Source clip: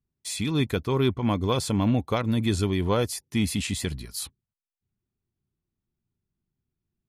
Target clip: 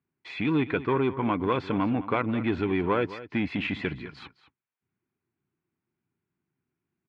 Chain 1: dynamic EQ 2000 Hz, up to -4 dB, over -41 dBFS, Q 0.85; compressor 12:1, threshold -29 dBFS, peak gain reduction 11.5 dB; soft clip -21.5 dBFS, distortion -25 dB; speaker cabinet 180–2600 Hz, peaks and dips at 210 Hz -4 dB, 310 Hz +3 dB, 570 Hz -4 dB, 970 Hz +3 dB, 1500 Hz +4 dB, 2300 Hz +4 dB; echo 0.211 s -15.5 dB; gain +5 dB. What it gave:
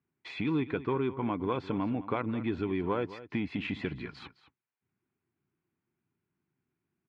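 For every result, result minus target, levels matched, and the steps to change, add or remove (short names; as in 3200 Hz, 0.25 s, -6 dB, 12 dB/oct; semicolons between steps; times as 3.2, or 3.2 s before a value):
compressor: peak gain reduction +7 dB; 2000 Hz band -2.0 dB
change: compressor 12:1, threshold -21 dBFS, peak gain reduction 4.5 dB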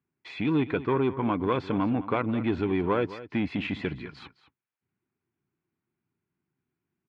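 2000 Hz band -2.5 dB
remove: dynamic EQ 2000 Hz, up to -4 dB, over -41 dBFS, Q 0.85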